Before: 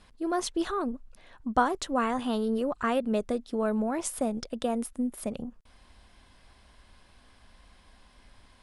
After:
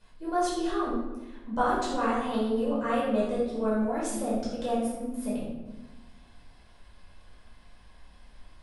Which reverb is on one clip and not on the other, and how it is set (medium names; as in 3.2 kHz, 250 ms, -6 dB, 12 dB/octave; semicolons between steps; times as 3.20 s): simulated room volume 510 m³, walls mixed, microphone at 5 m; trim -11.5 dB